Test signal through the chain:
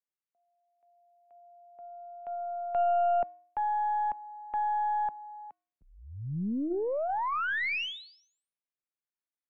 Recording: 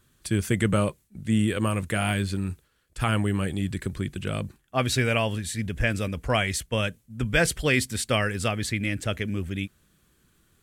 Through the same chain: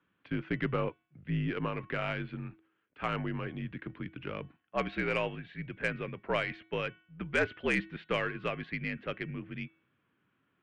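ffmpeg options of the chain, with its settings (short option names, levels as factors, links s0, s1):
-af "bandreject=f=384.8:t=h:w=4,bandreject=f=769.6:t=h:w=4,bandreject=f=1154.4:t=h:w=4,bandreject=f=1539.2:t=h:w=4,bandreject=f=1924:t=h:w=4,bandreject=f=2308.8:t=h:w=4,bandreject=f=2693.6:t=h:w=4,bandreject=f=3078.4:t=h:w=4,bandreject=f=3463.2:t=h:w=4,bandreject=f=3848:t=h:w=4,bandreject=f=4232.8:t=h:w=4,highpass=f=210:t=q:w=0.5412,highpass=f=210:t=q:w=1.307,lowpass=f=2900:t=q:w=0.5176,lowpass=f=2900:t=q:w=0.7071,lowpass=f=2900:t=q:w=1.932,afreqshift=-60,aeval=exprs='0.316*(cos(1*acos(clip(val(0)/0.316,-1,1)))-cos(1*PI/2))+0.0794*(cos(2*acos(clip(val(0)/0.316,-1,1)))-cos(2*PI/2))+0.0447*(cos(4*acos(clip(val(0)/0.316,-1,1)))-cos(4*PI/2))':c=same,volume=0.501"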